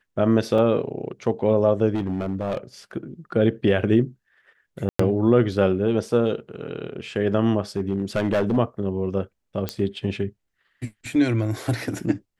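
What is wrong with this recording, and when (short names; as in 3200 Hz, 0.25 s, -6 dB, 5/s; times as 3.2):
0.58 gap 3.4 ms
1.94–2.58 clipped -21 dBFS
4.89–4.99 gap 0.104 s
7.77–8.58 clipped -17 dBFS
9.69 pop -10 dBFS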